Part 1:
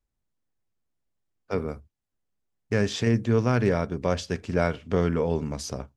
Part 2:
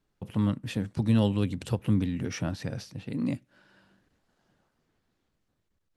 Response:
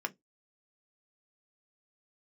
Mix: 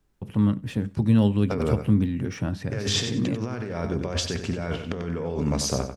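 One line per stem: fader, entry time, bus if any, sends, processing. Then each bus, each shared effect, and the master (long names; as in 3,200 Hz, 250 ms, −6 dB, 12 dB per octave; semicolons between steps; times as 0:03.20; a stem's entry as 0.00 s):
+2.5 dB, 0.00 s, no send, echo send −8 dB, mains-hum notches 50/100 Hz; compressor whose output falls as the input rises −31 dBFS, ratio −1
−3.0 dB, 0.00 s, send −7.5 dB, echo send −23.5 dB, de-essing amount 100%; low-shelf EQ 270 Hz +10.5 dB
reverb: on, RT60 0.15 s, pre-delay 3 ms
echo: repeating echo 93 ms, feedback 26%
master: no processing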